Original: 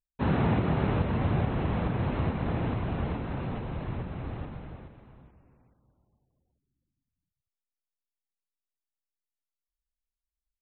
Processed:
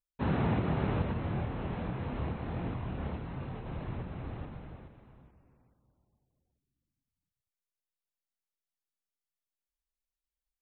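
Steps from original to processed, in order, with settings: 1.13–3.66 s: chorus voices 2, 1.3 Hz, delay 25 ms, depth 3 ms; trim -4 dB

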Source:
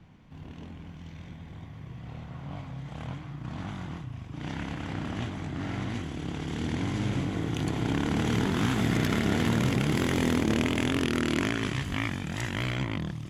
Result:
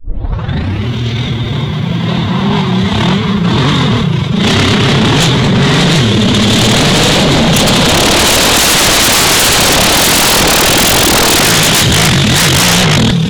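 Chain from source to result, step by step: tape start-up on the opening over 0.90 s; peaking EQ 3.7 kHz +12.5 dB 0.52 oct; formant-preserving pitch shift +6 st; dynamic bell 4.8 kHz, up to +4 dB, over -45 dBFS, Q 1.2; sine folder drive 19 dB, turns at -11.5 dBFS; trim +6.5 dB

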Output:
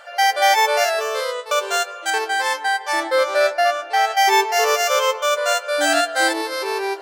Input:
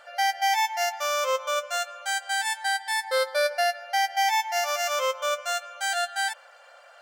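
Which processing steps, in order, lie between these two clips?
0.75–1.51 s: fade out quadratic; 2.10–4.08 s: treble shelf 3.3 kHz -9.5 dB; ever faster or slower copies 119 ms, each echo -5 st, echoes 2, each echo -6 dB; trim +7.5 dB

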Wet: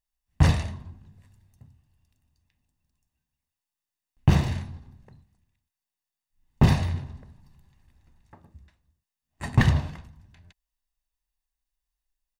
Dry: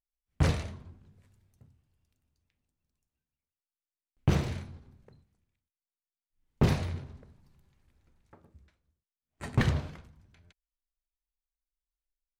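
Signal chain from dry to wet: comb 1.1 ms, depth 46%; trim +4.5 dB

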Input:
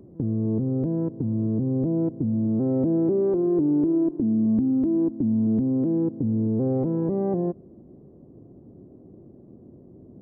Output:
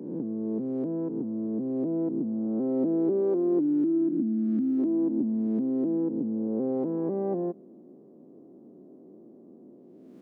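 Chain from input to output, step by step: reverse spectral sustain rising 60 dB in 1.14 s; high-pass 210 Hz 24 dB/octave; time-frequency box 3.60–4.79 s, 350–1200 Hz -10 dB; trim -3.5 dB

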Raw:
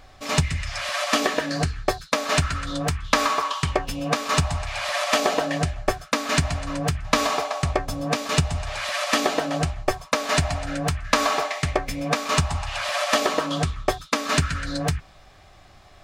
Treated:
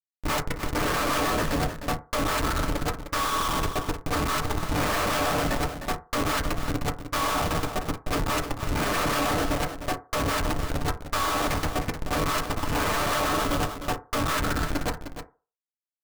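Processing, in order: high-pass 940 Hz 6 dB/octave; peaking EQ 1.2 kHz +6.5 dB 0.61 oct; Schmitt trigger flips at -25.5 dBFS; bit crusher 6-bit; on a send: delay 306 ms -10 dB; on the sum: FDN reverb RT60 0.34 s, low-frequency decay 0.75×, high-frequency decay 0.3×, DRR 5.5 dB

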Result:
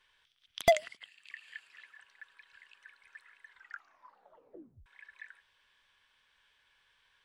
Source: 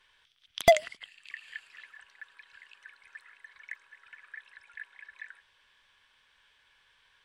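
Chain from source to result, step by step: 0.71–2.09 s: high-pass 100 Hz 6 dB/octave; 3.47 s: tape stop 1.39 s; trim -4.5 dB

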